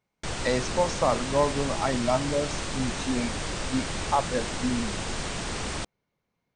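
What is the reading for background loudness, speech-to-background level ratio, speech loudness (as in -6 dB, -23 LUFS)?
-32.0 LUFS, 3.0 dB, -29.0 LUFS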